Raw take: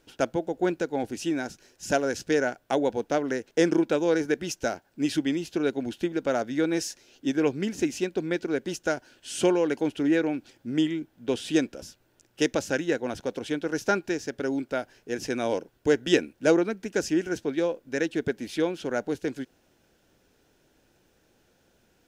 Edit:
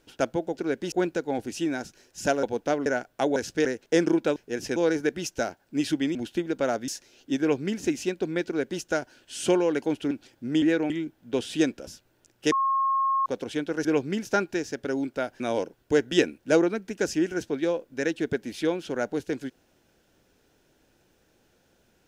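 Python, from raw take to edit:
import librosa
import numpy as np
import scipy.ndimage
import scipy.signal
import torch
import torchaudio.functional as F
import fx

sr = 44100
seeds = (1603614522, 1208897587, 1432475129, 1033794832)

y = fx.edit(x, sr, fx.swap(start_s=2.08, length_s=0.29, other_s=2.87, other_length_s=0.43),
    fx.cut(start_s=5.4, length_s=0.41),
    fx.cut(start_s=6.54, length_s=0.29),
    fx.duplicate(start_s=7.35, length_s=0.4, to_s=13.8),
    fx.duplicate(start_s=8.41, length_s=0.35, to_s=0.57),
    fx.move(start_s=10.06, length_s=0.28, to_s=10.85),
    fx.bleep(start_s=12.47, length_s=0.74, hz=1080.0, db=-21.0),
    fx.move(start_s=14.95, length_s=0.4, to_s=4.01), tone=tone)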